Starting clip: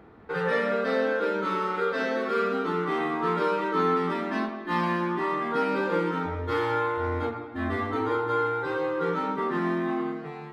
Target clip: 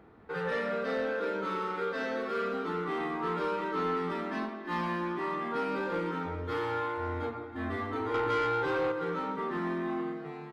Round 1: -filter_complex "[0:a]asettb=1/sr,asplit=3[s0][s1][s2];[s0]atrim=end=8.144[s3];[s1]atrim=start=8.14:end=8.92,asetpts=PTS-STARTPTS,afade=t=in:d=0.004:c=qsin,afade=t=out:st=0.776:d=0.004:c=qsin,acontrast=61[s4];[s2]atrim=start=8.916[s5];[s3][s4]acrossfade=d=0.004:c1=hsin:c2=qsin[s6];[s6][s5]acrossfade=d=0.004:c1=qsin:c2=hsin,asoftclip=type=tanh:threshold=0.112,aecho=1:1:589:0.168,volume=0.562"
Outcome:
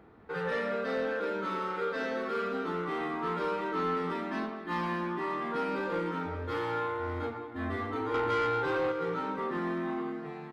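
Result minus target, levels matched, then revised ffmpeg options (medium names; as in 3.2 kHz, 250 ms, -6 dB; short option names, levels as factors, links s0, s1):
echo 266 ms late
-filter_complex "[0:a]asettb=1/sr,asplit=3[s0][s1][s2];[s0]atrim=end=8.144[s3];[s1]atrim=start=8.14:end=8.92,asetpts=PTS-STARTPTS,afade=t=in:d=0.004:c=qsin,afade=t=out:st=0.776:d=0.004:c=qsin,acontrast=61[s4];[s2]atrim=start=8.916[s5];[s3][s4]acrossfade=d=0.004:c1=hsin:c2=qsin[s6];[s6][s5]acrossfade=d=0.004:c1=qsin:c2=hsin,asoftclip=type=tanh:threshold=0.112,aecho=1:1:323:0.168,volume=0.562"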